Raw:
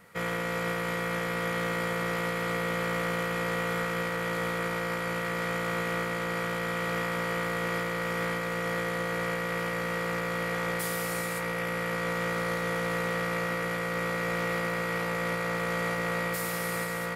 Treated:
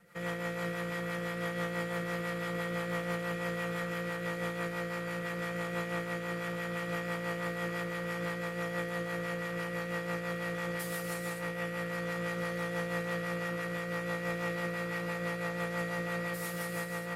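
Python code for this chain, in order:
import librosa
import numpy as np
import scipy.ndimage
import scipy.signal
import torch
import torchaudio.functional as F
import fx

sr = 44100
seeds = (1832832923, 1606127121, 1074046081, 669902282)

y = x + 0.96 * np.pad(x, (int(5.8 * sr / 1000.0), 0))[:len(x)]
y = fx.rotary(y, sr, hz=6.0)
y = y * librosa.db_to_amplitude(-7.0)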